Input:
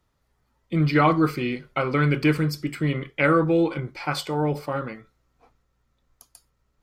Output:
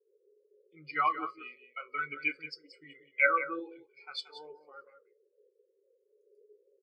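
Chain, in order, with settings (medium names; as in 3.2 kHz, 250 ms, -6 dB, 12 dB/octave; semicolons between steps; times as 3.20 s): frequency weighting ITU-R 468; band noise 360–550 Hz -40 dBFS; feedback comb 140 Hz, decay 0.49 s, harmonics all, mix 60%; delay 179 ms -5 dB; spectral contrast expander 2.5:1; trim -1.5 dB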